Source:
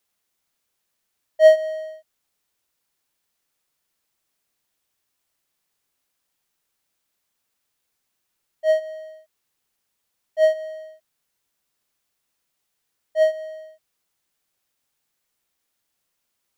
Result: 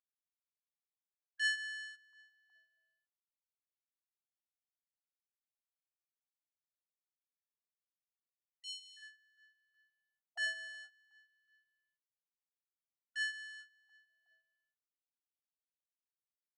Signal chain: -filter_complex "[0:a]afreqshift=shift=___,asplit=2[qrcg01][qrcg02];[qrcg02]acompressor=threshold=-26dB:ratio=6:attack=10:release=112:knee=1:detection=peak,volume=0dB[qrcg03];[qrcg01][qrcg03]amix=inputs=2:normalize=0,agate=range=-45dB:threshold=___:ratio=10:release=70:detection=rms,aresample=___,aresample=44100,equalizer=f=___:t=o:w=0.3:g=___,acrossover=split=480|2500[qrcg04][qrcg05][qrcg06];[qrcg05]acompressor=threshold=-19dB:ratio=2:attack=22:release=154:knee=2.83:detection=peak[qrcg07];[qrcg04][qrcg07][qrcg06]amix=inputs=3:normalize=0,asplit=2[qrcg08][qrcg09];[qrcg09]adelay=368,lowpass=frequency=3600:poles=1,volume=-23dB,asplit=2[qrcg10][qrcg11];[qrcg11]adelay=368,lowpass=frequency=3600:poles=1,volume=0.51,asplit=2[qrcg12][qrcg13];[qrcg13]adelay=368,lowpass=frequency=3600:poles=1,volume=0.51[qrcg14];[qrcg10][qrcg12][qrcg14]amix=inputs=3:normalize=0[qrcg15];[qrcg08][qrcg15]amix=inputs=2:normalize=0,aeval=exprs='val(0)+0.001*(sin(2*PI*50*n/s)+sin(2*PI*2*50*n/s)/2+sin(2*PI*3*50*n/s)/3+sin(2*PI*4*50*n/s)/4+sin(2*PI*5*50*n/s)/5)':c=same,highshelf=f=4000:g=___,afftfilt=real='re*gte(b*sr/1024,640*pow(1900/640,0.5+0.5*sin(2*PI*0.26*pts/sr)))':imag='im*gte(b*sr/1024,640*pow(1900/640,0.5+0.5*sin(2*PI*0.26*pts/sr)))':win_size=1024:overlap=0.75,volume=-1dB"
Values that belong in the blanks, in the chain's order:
-150, -32dB, 22050, 2400, -12, -2.5